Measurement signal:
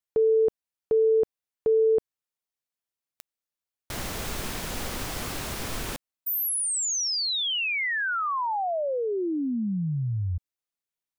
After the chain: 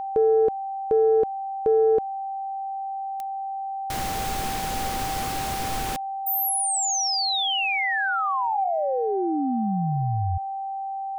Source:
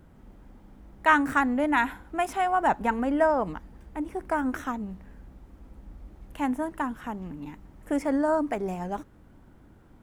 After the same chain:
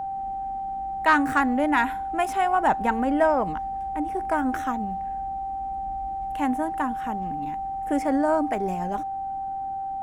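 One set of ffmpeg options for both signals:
-af "aeval=exprs='val(0)+0.0316*sin(2*PI*780*n/s)':c=same,acontrast=71,volume=-4.5dB"

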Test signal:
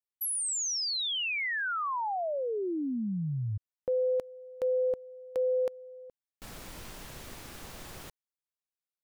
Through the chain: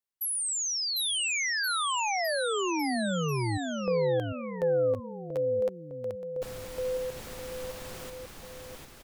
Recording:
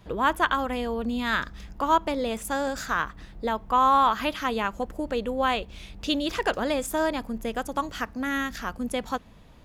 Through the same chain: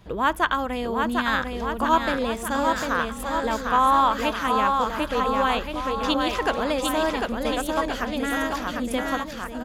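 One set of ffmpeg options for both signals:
-af "aecho=1:1:750|1425|2032|2579|3071:0.631|0.398|0.251|0.158|0.1,volume=1dB"

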